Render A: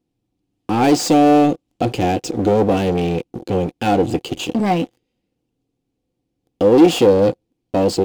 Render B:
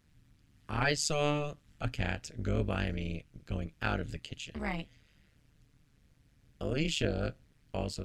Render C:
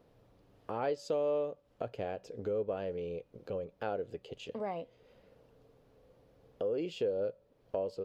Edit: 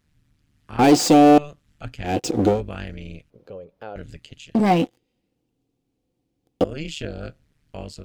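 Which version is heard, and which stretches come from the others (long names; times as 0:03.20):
B
0:00.79–0:01.38: punch in from A
0:02.11–0:02.54: punch in from A, crossfade 0.16 s
0:03.30–0:03.96: punch in from C
0:04.55–0:06.64: punch in from A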